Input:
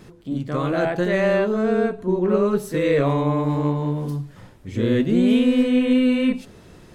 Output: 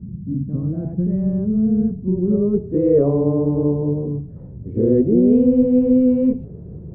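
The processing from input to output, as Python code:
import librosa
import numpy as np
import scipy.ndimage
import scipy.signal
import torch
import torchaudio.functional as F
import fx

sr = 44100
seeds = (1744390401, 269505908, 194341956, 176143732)

y = fx.dmg_noise_band(x, sr, seeds[0], low_hz=57.0, high_hz=180.0, level_db=-36.0)
y = fx.filter_sweep_lowpass(y, sr, from_hz=210.0, to_hz=440.0, start_s=1.92, end_s=3.03, q=2.3)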